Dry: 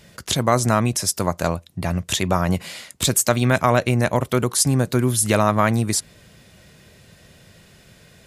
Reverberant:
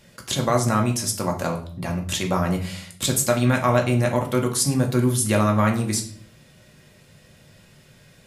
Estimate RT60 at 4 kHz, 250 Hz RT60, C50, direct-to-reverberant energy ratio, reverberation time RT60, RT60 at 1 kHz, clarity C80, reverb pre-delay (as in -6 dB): 0.40 s, 0.80 s, 10.5 dB, 1.5 dB, 0.50 s, 0.45 s, 15.0 dB, 4 ms